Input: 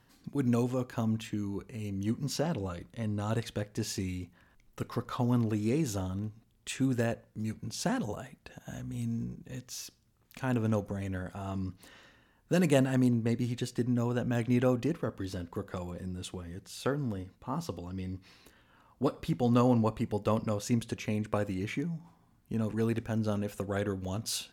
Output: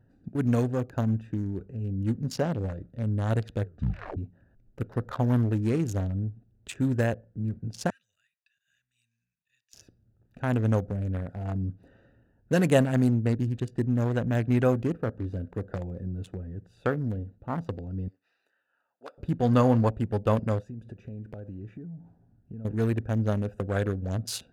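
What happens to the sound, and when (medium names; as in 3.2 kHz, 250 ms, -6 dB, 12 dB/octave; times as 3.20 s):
3.59 s: tape stop 0.59 s
7.90–9.74 s: inverse Chebyshev high-pass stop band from 890 Hz, stop band 50 dB
18.08–19.18 s: high-pass 1.3 kHz
20.60–22.65 s: compression 5:1, threshold -41 dBFS
whole clip: local Wiener filter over 41 samples; fifteen-band graphic EQ 100 Hz +6 dB, 630 Hz +4 dB, 1.6 kHz +5 dB; trim +2.5 dB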